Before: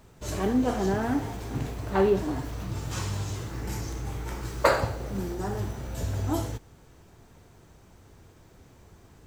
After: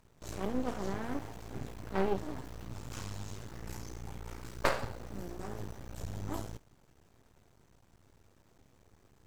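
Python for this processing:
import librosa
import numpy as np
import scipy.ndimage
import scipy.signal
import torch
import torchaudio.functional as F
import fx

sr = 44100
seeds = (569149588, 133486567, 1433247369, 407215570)

y = fx.cheby_harmonics(x, sr, harmonics=(3,), levels_db=(-13,), full_scale_db=-3.5)
y = np.maximum(y, 0.0)
y = y * librosa.db_to_amplitude(3.0)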